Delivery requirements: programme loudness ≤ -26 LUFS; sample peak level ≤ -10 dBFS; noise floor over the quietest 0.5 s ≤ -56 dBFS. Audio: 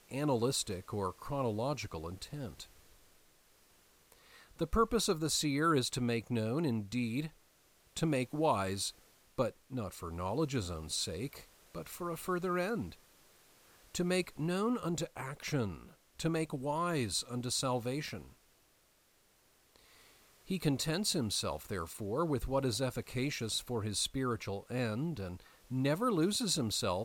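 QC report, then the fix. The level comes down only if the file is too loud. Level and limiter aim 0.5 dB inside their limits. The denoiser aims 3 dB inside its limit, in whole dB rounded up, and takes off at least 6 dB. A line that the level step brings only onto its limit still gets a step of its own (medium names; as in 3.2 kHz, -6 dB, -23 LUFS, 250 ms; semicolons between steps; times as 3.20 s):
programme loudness -35.5 LUFS: pass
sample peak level -17.5 dBFS: pass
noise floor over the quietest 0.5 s -70 dBFS: pass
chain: none needed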